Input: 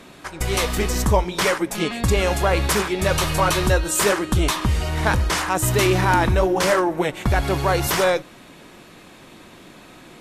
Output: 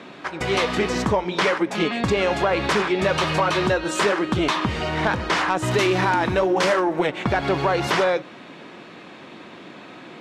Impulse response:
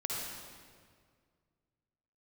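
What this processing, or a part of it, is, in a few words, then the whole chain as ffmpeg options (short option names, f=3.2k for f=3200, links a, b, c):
AM radio: -filter_complex "[0:a]highpass=170,lowpass=3.7k,acompressor=threshold=-20dB:ratio=6,asoftclip=type=tanh:threshold=-13dB,asettb=1/sr,asplit=3[a][b][c];[a]atrim=end=5.714[d];[b]atrim=start=5.71:end=7.07,asetpts=PTS-STARTPTS,afade=t=in:d=0.004:c=qsin,afade=t=out:st=1.356:d=0.004:c=qsin,highshelf=f=6.1k:g=10[e];[c]atrim=start=7.066[f];[d][e]acrossfade=d=0.004:c1=hsin:c2=qsin[g];[g][f]acrossfade=d=0.004:c1=qsin:c2=hsin,volume=4.5dB"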